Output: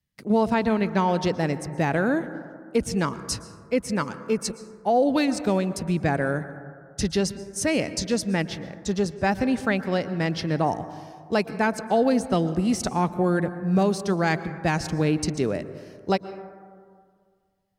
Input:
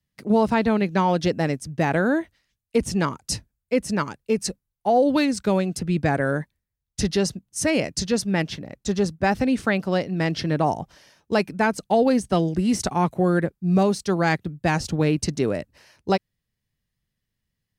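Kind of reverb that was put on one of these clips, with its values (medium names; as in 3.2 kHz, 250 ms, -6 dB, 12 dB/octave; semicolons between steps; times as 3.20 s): plate-style reverb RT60 2 s, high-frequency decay 0.25×, pre-delay 105 ms, DRR 13 dB; trim -2 dB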